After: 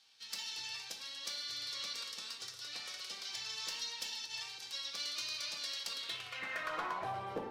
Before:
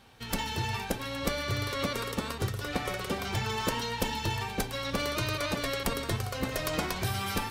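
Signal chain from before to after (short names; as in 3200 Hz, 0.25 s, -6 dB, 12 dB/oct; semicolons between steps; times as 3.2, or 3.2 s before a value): 4.23–4.81 negative-ratio compressor -32 dBFS, ratio -0.5; band-pass sweep 4900 Hz -> 440 Hz, 5.88–7.44; hard clip -32 dBFS, distortion -21 dB; shoebox room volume 410 m³, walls mixed, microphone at 0.67 m; gain +1.5 dB; Vorbis 64 kbps 44100 Hz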